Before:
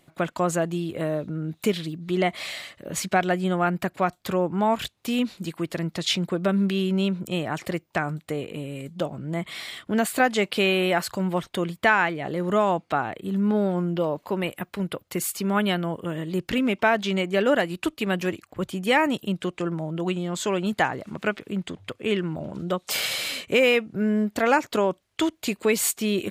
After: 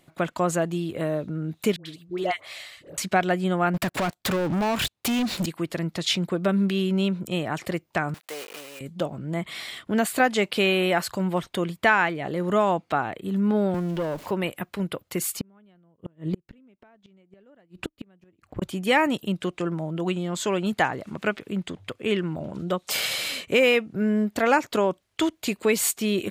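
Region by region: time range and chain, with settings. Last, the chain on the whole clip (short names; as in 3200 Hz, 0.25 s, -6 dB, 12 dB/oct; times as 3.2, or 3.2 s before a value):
1.76–2.98 bell 210 Hz -14.5 dB 0.59 oct + dispersion highs, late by 95 ms, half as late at 840 Hz + upward expander, over -35 dBFS
3.74–5.46 compressor 3:1, threshold -37 dBFS + sample leveller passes 5
8.14–8.81 block floating point 3-bit + HPF 640 Hz
13.74–14.31 zero-crossing step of -39 dBFS + tube stage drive 21 dB, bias 0.4 + three-band squash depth 40%
15.39–18.62 tilt -2.5 dB/oct + flipped gate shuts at -16 dBFS, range -37 dB
whole clip: dry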